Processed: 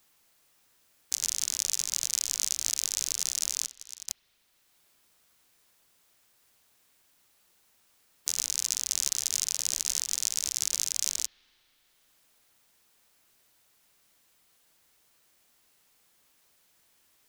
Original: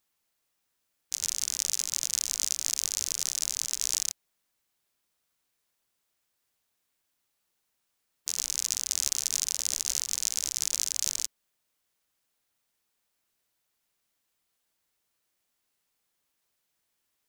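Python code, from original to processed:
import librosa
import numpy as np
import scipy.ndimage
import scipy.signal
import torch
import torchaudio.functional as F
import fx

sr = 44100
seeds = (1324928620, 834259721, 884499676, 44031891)

y = fx.auto_swell(x, sr, attack_ms=518.0, at=(3.66, 4.08), fade=0.02)
y = fx.rev_spring(y, sr, rt60_s=2.0, pass_ms=(30, 38), chirp_ms=45, drr_db=18.0)
y = fx.band_squash(y, sr, depth_pct=40)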